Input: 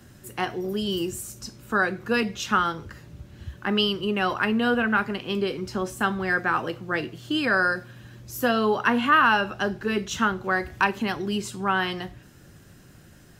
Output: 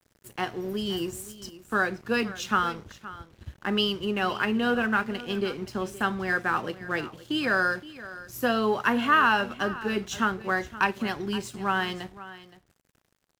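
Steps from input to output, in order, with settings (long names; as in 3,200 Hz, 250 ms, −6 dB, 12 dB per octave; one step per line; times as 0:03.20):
dead-zone distortion −45 dBFS
on a send: single-tap delay 520 ms −16.5 dB
on the sum: level −2 dB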